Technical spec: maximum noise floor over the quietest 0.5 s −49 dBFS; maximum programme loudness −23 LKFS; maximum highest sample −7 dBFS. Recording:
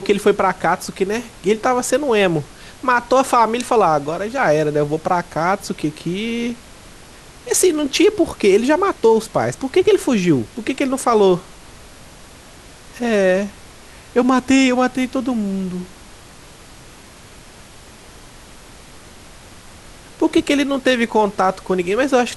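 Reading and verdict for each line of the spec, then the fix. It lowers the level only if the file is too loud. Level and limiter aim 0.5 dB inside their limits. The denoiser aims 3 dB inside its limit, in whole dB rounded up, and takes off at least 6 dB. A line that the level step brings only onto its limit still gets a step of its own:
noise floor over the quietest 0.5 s −41 dBFS: out of spec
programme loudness −17.5 LKFS: out of spec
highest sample −4.5 dBFS: out of spec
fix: broadband denoise 6 dB, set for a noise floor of −41 dBFS
level −6 dB

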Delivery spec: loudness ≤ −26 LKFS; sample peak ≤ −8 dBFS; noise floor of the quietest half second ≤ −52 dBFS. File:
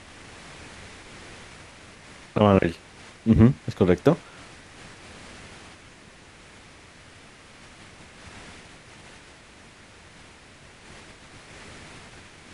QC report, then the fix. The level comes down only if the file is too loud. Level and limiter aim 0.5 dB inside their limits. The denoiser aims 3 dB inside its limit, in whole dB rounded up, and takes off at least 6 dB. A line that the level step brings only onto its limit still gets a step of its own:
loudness −21.5 LKFS: out of spec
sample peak −3.5 dBFS: out of spec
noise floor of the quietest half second −49 dBFS: out of spec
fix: level −5 dB

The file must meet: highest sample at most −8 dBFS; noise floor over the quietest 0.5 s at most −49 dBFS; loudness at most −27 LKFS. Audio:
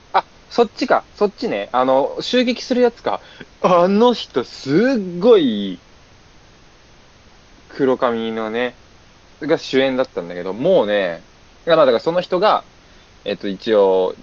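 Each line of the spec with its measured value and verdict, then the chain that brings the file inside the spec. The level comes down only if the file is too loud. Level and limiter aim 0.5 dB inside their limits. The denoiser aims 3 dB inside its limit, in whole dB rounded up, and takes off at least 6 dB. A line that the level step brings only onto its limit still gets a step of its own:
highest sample −2.0 dBFS: out of spec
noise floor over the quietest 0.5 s −47 dBFS: out of spec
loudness −17.5 LKFS: out of spec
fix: level −10 dB

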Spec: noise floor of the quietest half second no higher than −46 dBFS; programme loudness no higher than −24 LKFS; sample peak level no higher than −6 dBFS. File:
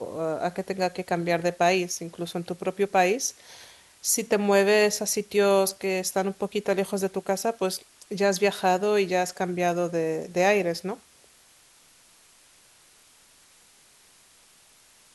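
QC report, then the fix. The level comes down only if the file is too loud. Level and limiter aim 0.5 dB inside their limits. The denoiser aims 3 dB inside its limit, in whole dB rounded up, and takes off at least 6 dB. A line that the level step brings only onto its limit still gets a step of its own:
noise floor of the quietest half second −57 dBFS: in spec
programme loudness −25.5 LKFS: in spec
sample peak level −9.0 dBFS: in spec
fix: no processing needed

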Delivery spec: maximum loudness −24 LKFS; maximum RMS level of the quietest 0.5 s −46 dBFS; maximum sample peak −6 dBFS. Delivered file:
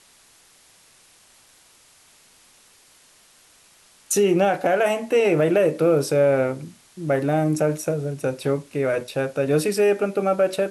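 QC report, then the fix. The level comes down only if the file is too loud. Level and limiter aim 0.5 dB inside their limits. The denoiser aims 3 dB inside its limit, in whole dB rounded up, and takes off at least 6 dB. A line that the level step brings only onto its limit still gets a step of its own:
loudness −21.0 LKFS: out of spec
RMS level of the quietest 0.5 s −55 dBFS: in spec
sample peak −9.0 dBFS: in spec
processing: level −3.5 dB

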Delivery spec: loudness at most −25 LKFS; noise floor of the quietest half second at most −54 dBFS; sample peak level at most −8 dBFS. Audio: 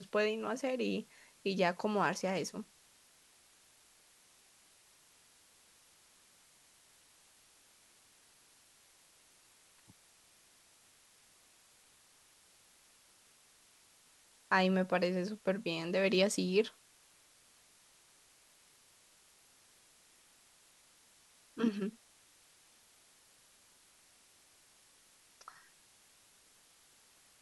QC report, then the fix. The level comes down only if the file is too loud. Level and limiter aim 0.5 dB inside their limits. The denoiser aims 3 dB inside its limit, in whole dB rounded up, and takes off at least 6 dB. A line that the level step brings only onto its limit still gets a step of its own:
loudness −34.0 LKFS: in spec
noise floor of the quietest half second −66 dBFS: in spec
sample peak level −15.0 dBFS: in spec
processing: no processing needed

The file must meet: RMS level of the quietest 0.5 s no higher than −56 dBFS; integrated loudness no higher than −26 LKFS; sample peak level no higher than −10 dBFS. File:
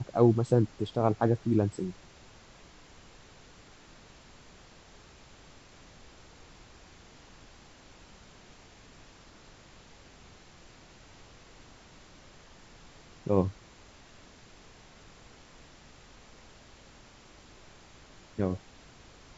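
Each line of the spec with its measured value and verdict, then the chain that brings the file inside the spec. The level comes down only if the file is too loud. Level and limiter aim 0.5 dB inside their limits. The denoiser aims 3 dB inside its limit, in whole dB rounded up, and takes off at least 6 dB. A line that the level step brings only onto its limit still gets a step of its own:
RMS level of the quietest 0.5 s −54 dBFS: out of spec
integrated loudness −29.0 LKFS: in spec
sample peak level −9.0 dBFS: out of spec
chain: broadband denoise 6 dB, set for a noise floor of −54 dBFS
brickwall limiter −10.5 dBFS

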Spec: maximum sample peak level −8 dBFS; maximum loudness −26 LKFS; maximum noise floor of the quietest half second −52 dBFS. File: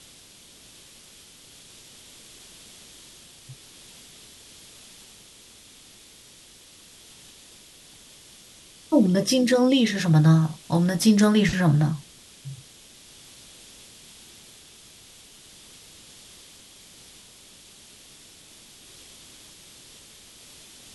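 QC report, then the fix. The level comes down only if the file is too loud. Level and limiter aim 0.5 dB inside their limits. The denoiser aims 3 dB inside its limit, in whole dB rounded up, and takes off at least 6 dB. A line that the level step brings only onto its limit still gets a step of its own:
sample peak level −6.5 dBFS: out of spec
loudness −20.5 LKFS: out of spec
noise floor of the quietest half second −50 dBFS: out of spec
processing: level −6 dB

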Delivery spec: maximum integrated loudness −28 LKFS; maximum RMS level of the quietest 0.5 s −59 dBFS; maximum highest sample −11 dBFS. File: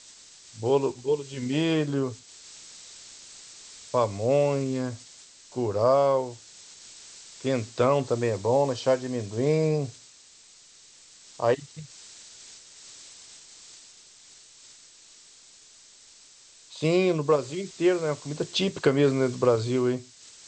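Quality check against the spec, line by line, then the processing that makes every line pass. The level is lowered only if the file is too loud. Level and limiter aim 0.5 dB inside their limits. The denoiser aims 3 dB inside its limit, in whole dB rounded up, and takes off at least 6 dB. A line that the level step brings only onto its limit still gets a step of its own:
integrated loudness −26.0 LKFS: out of spec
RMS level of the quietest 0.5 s −53 dBFS: out of spec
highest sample −7.5 dBFS: out of spec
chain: broadband denoise 7 dB, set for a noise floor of −53 dBFS
level −2.5 dB
brickwall limiter −11.5 dBFS

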